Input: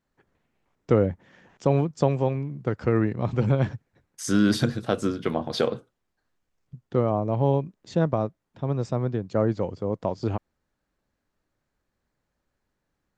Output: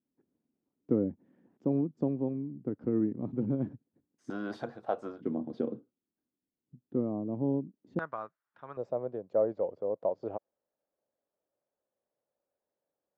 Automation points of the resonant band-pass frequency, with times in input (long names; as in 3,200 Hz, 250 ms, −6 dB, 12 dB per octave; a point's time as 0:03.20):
resonant band-pass, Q 3
270 Hz
from 0:04.30 760 Hz
from 0:05.21 270 Hz
from 0:07.99 1,400 Hz
from 0:08.77 570 Hz